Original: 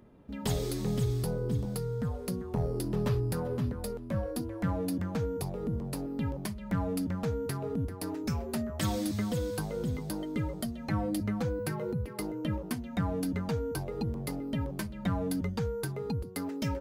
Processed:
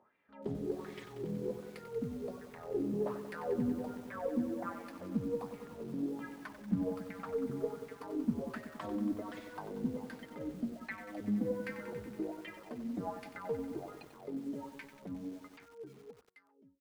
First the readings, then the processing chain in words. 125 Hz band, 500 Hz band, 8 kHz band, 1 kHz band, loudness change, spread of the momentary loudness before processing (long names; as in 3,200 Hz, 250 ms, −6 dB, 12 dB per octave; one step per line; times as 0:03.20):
−15.0 dB, −4.5 dB, below −15 dB, −5.5 dB, −6.0 dB, 5 LU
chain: fade-out on the ending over 3.53 s
LFO wah 1.3 Hz 230–2,200 Hz, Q 4.6
harmonic generator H 3 −36 dB, 6 −36 dB, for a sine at −26 dBFS
feedback echo at a low word length 93 ms, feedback 80%, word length 10 bits, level −10 dB
level +5.5 dB